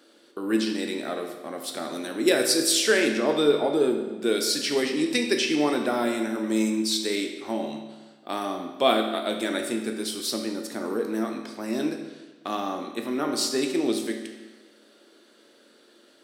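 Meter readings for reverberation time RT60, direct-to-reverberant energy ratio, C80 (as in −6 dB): 1.3 s, 3.0 dB, 7.5 dB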